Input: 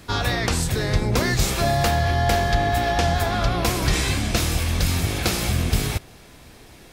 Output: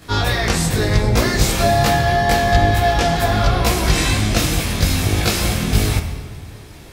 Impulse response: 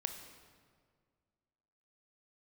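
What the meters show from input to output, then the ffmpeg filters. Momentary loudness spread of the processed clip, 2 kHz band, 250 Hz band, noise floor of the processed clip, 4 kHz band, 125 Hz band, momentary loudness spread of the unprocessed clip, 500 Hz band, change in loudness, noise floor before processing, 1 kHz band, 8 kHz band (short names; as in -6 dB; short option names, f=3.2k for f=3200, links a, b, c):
4 LU, +5.0 dB, +5.5 dB, -38 dBFS, +4.5 dB, +4.5 dB, 3 LU, +5.5 dB, +5.0 dB, -47 dBFS, +5.5 dB, +4.5 dB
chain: -filter_complex "[0:a]asplit=2[a][b];[1:a]atrim=start_sample=2205,adelay=19[c];[b][c]afir=irnorm=-1:irlink=0,volume=4.5dB[d];[a][d]amix=inputs=2:normalize=0,volume=-1dB"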